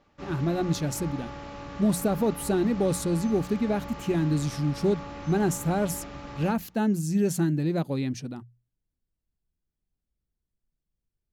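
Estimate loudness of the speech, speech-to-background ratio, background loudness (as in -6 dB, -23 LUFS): -27.5 LUFS, 13.0 dB, -40.5 LUFS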